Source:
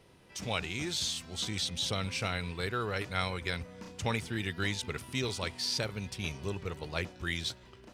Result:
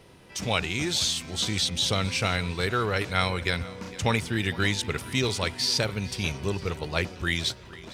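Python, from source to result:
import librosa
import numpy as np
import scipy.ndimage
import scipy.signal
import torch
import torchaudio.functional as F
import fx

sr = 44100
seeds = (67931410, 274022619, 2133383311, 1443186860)

y = fx.echo_feedback(x, sr, ms=459, feedback_pct=48, wet_db=-19.0)
y = y * 10.0 ** (7.5 / 20.0)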